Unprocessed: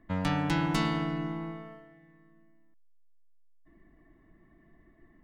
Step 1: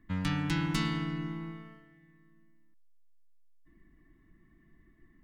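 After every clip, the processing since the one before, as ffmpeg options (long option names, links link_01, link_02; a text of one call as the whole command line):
ffmpeg -i in.wav -af "equalizer=frequency=640:width=1.2:gain=-15" out.wav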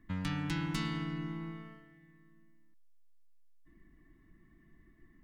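ffmpeg -i in.wav -af "acompressor=threshold=-39dB:ratio=1.5" out.wav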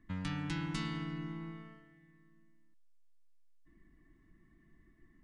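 ffmpeg -i in.wav -af "aresample=22050,aresample=44100,volume=-2.5dB" out.wav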